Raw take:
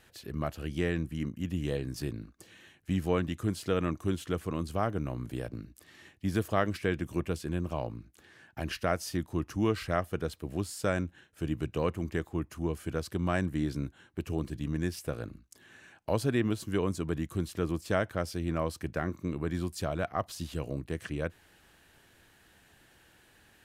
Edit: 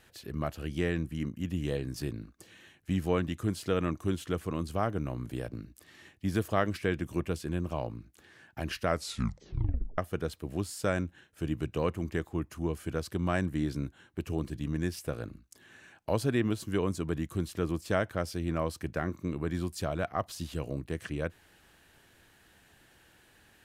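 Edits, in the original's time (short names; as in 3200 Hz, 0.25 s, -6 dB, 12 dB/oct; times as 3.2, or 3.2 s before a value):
8.87 tape stop 1.11 s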